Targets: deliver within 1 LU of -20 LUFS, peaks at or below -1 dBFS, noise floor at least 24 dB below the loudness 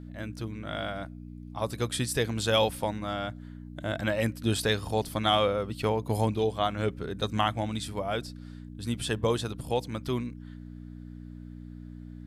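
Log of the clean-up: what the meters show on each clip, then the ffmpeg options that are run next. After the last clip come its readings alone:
hum 60 Hz; harmonics up to 300 Hz; hum level -41 dBFS; loudness -30.0 LUFS; peak -12.5 dBFS; loudness target -20.0 LUFS
-> -af "bandreject=f=60:t=h:w=4,bandreject=f=120:t=h:w=4,bandreject=f=180:t=h:w=4,bandreject=f=240:t=h:w=4,bandreject=f=300:t=h:w=4"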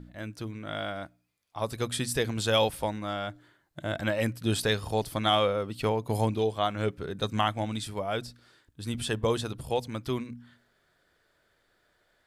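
hum none; loudness -30.0 LUFS; peak -13.0 dBFS; loudness target -20.0 LUFS
-> -af "volume=10dB"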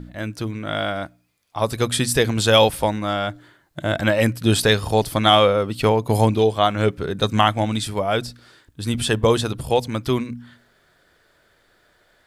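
loudness -20.0 LUFS; peak -3.0 dBFS; noise floor -61 dBFS

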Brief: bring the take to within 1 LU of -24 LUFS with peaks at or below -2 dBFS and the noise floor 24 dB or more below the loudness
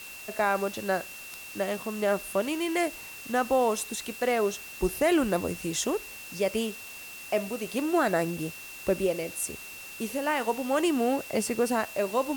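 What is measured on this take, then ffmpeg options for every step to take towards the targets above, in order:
steady tone 2700 Hz; tone level -43 dBFS; noise floor -43 dBFS; noise floor target -53 dBFS; loudness -28.5 LUFS; peak -13.0 dBFS; loudness target -24.0 LUFS
-> -af "bandreject=f=2.7k:w=30"
-af "afftdn=nr=10:nf=-43"
-af "volume=4.5dB"

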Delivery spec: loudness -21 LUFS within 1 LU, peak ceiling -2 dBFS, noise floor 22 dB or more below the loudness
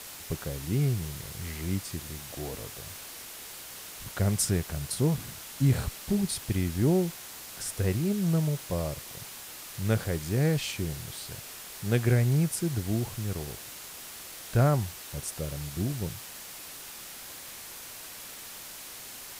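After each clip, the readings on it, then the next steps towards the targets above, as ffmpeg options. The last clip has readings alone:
noise floor -44 dBFS; noise floor target -53 dBFS; loudness -31.0 LUFS; peak -11.5 dBFS; loudness target -21.0 LUFS
-> -af "afftdn=nr=9:nf=-44"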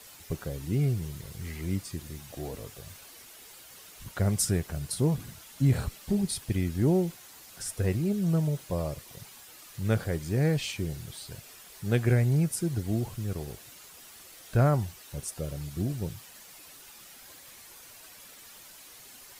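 noise floor -50 dBFS; noise floor target -52 dBFS
-> -af "afftdn=nr=6:nf=-50"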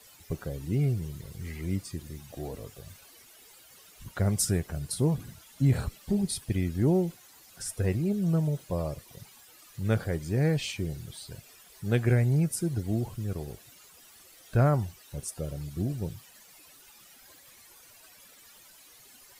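noise floor -55 dBFS; loudness -30.0 LUFS; peak -12.0 dBFS; loudness target -21.0 LUFS
-> -af "volume=9dB"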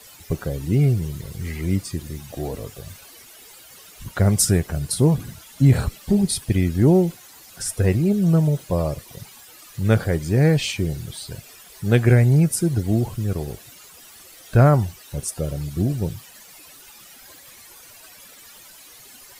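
loudness -21.0 LUFS; peak -3.0 dBFS; noise floor -46 dBFS

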